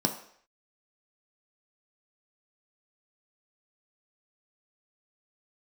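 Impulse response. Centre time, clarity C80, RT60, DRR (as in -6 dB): 16 ms, 13.0 dB, 0.60 s, 3.0 dB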